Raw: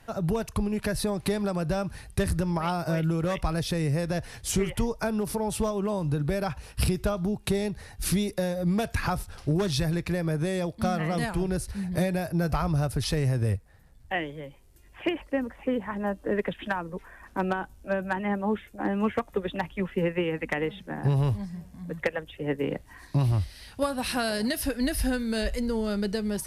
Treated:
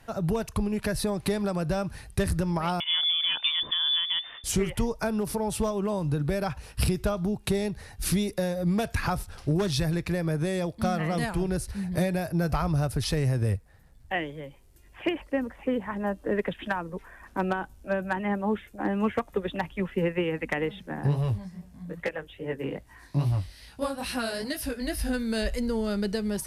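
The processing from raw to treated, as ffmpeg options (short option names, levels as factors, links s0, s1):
-filter_complex "[0:a]asettb=1/sr,asplit=3[s0][s1][s2];[s0]atrim=end=2.804[s3];[s1]atrim=start=2.8:end=4.44,asetpts=PTS-STARTPTS,afade=t=in:d=0.004:c=qsin,afade=t=out:st=1.636:d=0.004:c=qsin,lowpass=f=3100:t=q:w=0.5098,lowpass=f=3100:t=q:w=0.6013,lowpass=f=3100:t=q:w=0.9,lowpass=f=3100:t=q:w=2.563,afreqshift=-3600[s4];[s2]atrim=start=4.436[s5];[s3][s4]acrossfade=d=0.004:c1=hsin:c2=qsin[s6];[s6][s5]acrossfade=d=0.004:c1=qsin:c2=hsin,asplit=3[s7][s8][s9];[s7]afade=t=out:st=21.06:d=0.02[s10];[s8]flanger=delay=15.5:depth=6.8:speed=2.4,afade=t=in:st=21.06:d=0.02,afade=t=out:st=25.13:d=0.02[s11];[s9]afade=t=in:st=25.13:d=0.02[s12];[s10][s11][s12]amix=inputs=3:normalize=0"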